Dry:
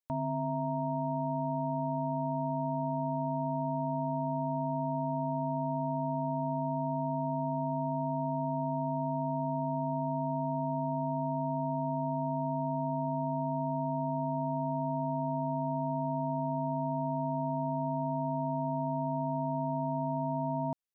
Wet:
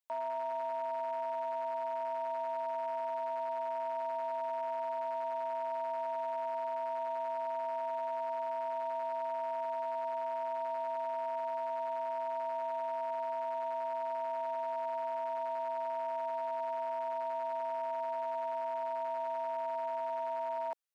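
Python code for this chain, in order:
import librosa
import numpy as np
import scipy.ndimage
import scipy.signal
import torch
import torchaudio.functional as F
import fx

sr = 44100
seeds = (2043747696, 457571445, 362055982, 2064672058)

y = np.clip(x, -10.0 ** (-27.0 / 20.0), 10.0 ** (-27.0 / 20.0))
y = scipy.signal.sosfilt(scipy.signal.cheby2(4, 60, 150.0, 'highpass', fs=sr, output='sos'), y)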